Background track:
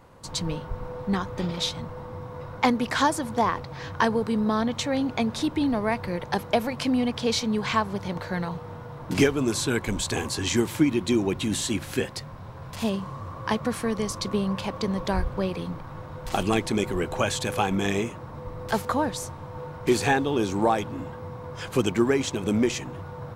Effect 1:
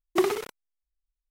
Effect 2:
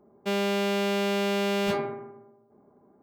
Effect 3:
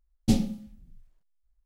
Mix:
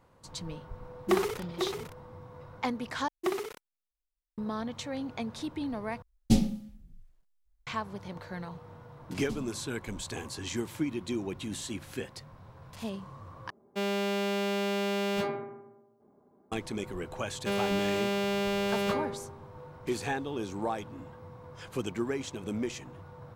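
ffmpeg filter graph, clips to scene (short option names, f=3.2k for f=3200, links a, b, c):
-filter_complex "[1:a]asplit=2[a][b];[3:a]asplit=2[c][d];[2:a]asplit=2[e][f];[0:a]volume=-10.5dB[g];[a]aecho=1:1:497:0.473[h];[g]asplit=4[i][j][k][l];[i]atrim=end=3.084[m];[b]atrim=end=1.3,asetpts=PTS-STARTPTS,volume=-7.5dB[n];[j]atrim=start=4.376:end=6.024[o];[c]atrim=end=1.65,asetpts=PTS-STARTPTS,volume=-0.5dB[p];[k]atrim=start=7.666:end=13.504[q];[e]atrim=end=3.02,asetpts=PTS-STARTPTS,volume=-4dB[r];[l]atrim=start=16.516[s];[h]atrim=end=1.3,asetpts=PTS-STARTPTS,volume=-3dB,afade=t=in:d=0.004:c=hsin,afade=t=out:st=1.296:d=0.004:c=hsin,adelay=930[t];[d]atrim=end=1.65,asetpts=PTS-STARTPTS,volume=-17dB,afade=t=in:d=0.004:c=hsin,afade=t=out:st=1.646:d=0.004:c=hsin,adelay=9010[u];[f]atrim=end=3.02,asetpts=PTS-STARTPTS,volume=-3.5dB,afade=t=in:d=0.004:c=hsin,afade=t=out:st=3.016:d=0.004:c=hsin,adelay=17200[v];[m][n]acrossfade=d=0.004:c1=hsin:c2=hsin[w];[w][o]acrossfade=d=0.004:c1=hsin:c2=hsin[x];[x][p]acrossfade=d=0.004:c1=hsin:c2=hsin[y];[y][q]acrossfade=d=0.004:c1=hsin:c2=hsin[z];[z][r]acrossfade=d=0.004:c1=hsin:c2=hsin[aa];[aa][s]acrossfade=d=0.004:c1=hsin:c2=hsin[ab];[ab][t][u][v]amix=inputs=4:normalize=0"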